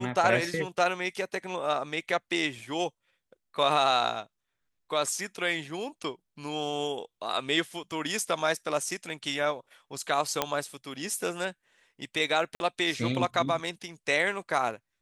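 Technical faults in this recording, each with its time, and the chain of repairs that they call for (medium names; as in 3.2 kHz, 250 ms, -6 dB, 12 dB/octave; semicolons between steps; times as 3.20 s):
10.42 s: pop -9 dBFS
12.55–12.60 s: dropout 51 ms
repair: de-click; interpolate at 12.55 s, 51 ms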